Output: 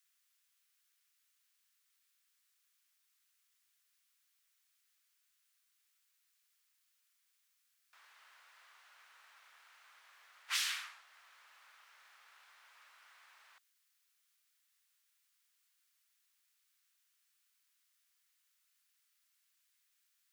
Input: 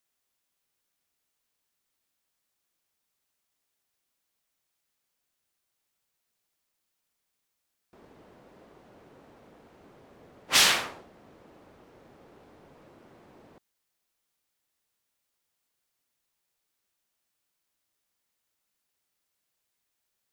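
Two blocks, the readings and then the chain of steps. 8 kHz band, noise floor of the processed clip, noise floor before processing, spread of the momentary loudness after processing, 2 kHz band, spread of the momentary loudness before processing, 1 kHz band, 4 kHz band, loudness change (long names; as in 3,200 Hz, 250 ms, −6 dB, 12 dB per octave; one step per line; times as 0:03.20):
−14.5 dB, −78 dBFS, −81 dBFS, 12 LU, −13.5 dB, 14 LU, −17.5 dB, −14.5 dB, −14.5 dB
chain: high-pass filter 1,300 Hz 24 dB per octave
downward compressor 3 to 1, threshold −43 dBFS, peak gain reduction 19 dB
level +3 dB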